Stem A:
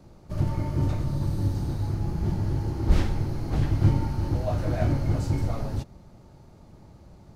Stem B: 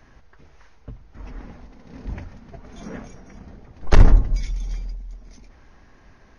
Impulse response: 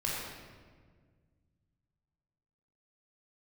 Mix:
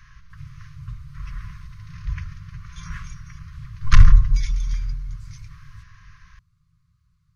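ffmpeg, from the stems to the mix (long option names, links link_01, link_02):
-filter_complex "[0:a]volume=-16dB,asplit=2[link_01][link_02];[link_02]volume=-18dB[link_03];[1:a]acontrast=30,volume=-1dB[link_04];[2:a]atrim=start_sample=2205[link_05];[link_03][link_05]afir=irnorm=-1:irlink=0[link_06];[link_01][link_04][link_06]amix=inputs=3:normalize=0,afftfilt=real='re*(1-between(b*sr/4096,180,1000))':imag='im*(1-between(b*sr/4096,180,1000))':win_size=4096:overlap=0.75"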